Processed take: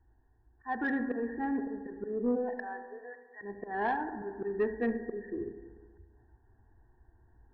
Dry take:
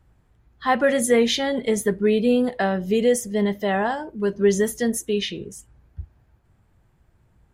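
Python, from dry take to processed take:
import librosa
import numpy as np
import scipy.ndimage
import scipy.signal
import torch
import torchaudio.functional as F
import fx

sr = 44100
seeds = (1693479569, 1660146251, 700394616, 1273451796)

p1 = fx.fixed_phaser(x, sr, hz=840.0, stages=8)
p2 = fx.rider(p1, sr, range_db=10, speed_s=2.0)
p3 = fx.highpass(p2, sr, hz=fx.line((2.35, 390.0), (3.41, 1300.0)), slope=24, at=(2.35, 3.41), fade=0.02)
p4 = fx.auto_swell(p3, sr, attack_ms=237.0)
p5 = fx.brickwall_lowpass(p4, sr, high_hz=1900.0)
p6 = p5 + fx.echo_single(p5, sr, ms=76, db=-14.5, dry=0)
p7 = fx.rev_schroeder(p6, sr, rt60_s=1.6, comb_ms=32, drr_db=8.5)
p8 = 10.0 ** (-17.0 / 20.0) * np.tanh(p7 / 10.0 ** (-17.0 / 20.0))
y = F.gain(torch.from_numpy(p8), -3.5).numpy()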